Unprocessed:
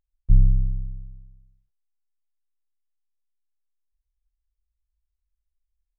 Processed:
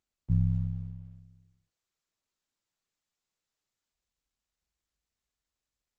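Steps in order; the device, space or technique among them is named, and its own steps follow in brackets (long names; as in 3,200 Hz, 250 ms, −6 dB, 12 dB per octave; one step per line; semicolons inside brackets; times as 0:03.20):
video call (high-pass filter 120 Hz 12 dB per octave; automatic gain control gain up to 4 dB; Opus 12 kbit/s 48,000 Hz)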